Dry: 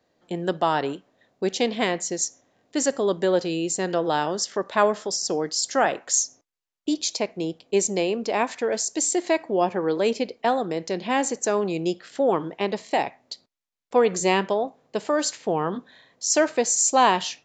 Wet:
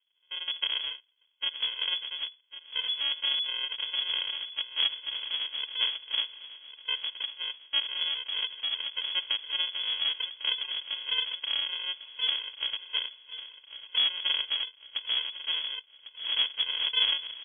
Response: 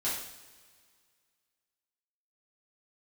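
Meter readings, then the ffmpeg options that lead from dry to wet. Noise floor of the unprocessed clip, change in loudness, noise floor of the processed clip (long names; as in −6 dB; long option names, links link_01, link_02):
−78 dBFS, −5.0 dB, −63 dBFS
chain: -af "aresample=16000,acrusher=samples=30:mix=1:aa=0.000001,aresample=44100,asoftclip=type=hard:threshold=-11dB,aecho=1:1:1100|2200|3300|4400|5500:0.2|0.0998|0.0499|0.0249|0.0125,lowpass=frequency=2900:width_type=q:width=0.5098,lowpass=frequency=2900:width_type=q:width=0.6013,lowpass=frequency=2900:width_type=q:width=0.9,lowpass=frequency=2900:width_type=q:width=2.563,afreqshift=-3400,volume=-7.5dB"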